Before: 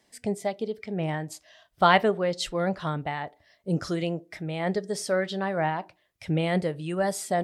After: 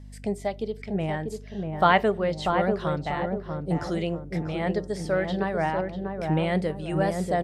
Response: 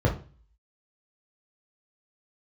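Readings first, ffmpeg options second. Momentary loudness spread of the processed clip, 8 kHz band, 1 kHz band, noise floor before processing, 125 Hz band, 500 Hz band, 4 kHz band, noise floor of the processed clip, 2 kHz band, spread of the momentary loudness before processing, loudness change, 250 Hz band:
9 LU, -8.5 dB, +1.0 dB, -68 dBFS, +2.0 dB, +1.5 dB, -3.0 dB, -42 dBFS, 0.0 dB, 12 LU, +0.5 dB, +2.0 dB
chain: -filter_complex "[0:a]asplit=2[a][b];[b]adelay=641,lowpass=f=800:p=1,volume=-3dB,asplit=2[c][d];[d]adelay=641,lowpass=f=800:p=1,volume=0.51,asplit=2[e][f];[f]adelay=641,lowpass=f=800:p=1,volume=0.51,asplit=2[g][h];[h]adelay=641,lowpass=f=800:p=1,volume=0.51,asplit=2[i][j];[j]adelay=641,lowpass=f=800:p=1,volume=0.51,asplit=2[k][l];[l]adelay=641,lowpass=f=800:p=1,volume=0.51,asplit=2[m][n];[n]adelay=641,lowpass=f=800:p=1,volume=0.51[o];[c][e][g][i][k][m][o]amix=inputs=7:normalize=0[p];[a][p]amix=inputs=2:normalize=0,aeval=exprs='val(0)+0.00794*(sin(2*PI*50*n/s)+sin(2*PI*2*50*n/s)/2+sin(2*PI*3*50*n/s)/3+sin(2*PI*4*50*n/s)/4+sin(2*PI*5*50*n/s)/5)':c=same,acrossover=split=3400[q][r];[r]acompressor=threshold=-44dB:ratio=4:attack=1:release=60[s];[q][s]amix=inputs=2:normalize=0,aresample=32000,aresample=44100"

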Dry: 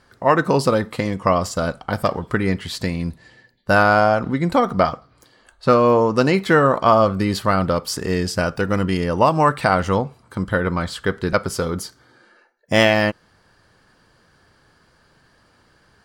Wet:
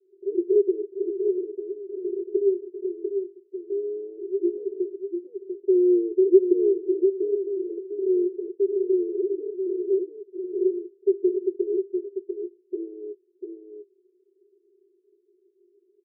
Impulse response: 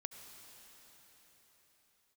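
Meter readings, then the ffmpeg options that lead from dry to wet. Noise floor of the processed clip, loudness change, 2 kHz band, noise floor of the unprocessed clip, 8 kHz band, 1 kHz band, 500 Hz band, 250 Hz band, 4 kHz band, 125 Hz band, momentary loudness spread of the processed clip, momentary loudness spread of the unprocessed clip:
-66 dBFS, -6.5 dB, under -40 dB, -58 dBFS, under -40 dB, under -40 dB, -3.0 dB, -4.5 dB, under -40 dB, under -40 dB, 14 LU, 10 LU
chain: -af "deesser=0.75,asuperpass=centerf=380:order=8:qfactor=5.7,aecho=1:1:695:0.501,volume=8dB"

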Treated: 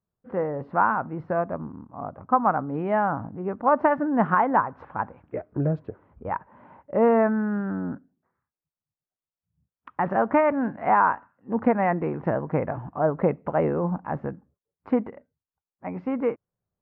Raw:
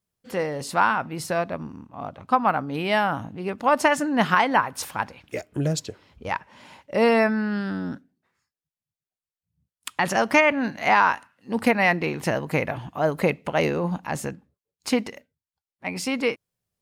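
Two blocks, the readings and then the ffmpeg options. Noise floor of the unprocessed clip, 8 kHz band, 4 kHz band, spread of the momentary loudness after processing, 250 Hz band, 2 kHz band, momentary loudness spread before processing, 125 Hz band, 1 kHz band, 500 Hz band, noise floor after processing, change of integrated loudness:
under -85 dBFS, under -40 dB, under -25 dB, 14 LU, 0.0 dB, -8.0 dB, 16 LU, 0.0 dB, -0.5 dB, 0.0 dB, under -85 dBFS, -1.5 dB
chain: -af "lowpass=f=1.4k:w=0.5412,lowpass=f=1.4k:w=1.3066"

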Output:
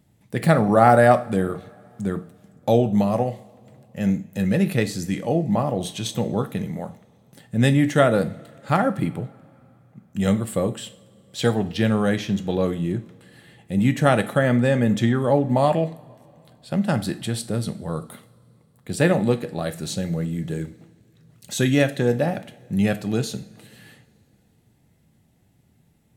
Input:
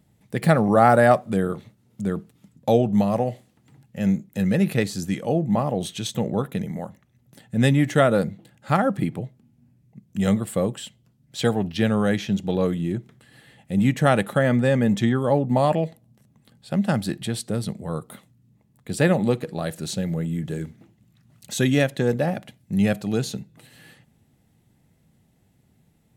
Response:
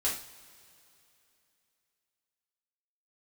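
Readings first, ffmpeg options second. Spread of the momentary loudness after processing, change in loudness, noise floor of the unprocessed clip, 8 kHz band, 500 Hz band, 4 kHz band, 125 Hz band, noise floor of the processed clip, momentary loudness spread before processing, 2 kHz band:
13 LU, +0.5 dB, -63 dBFS, +1.0 dB, +1.0 dB, +1.0 dB, +1.0 dB, -61 dBFS, 13 LU, +0.5 dB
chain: -filter_complex "[0:a]asplit=2[a][b];[1:a]atrim=start_sample=2205[c];[b][c]afir=irnorm=-1:irlink=0,volume=-13.5dB[d];[a][d]amix=inputs=2:normalize=0,volume=-1dB"

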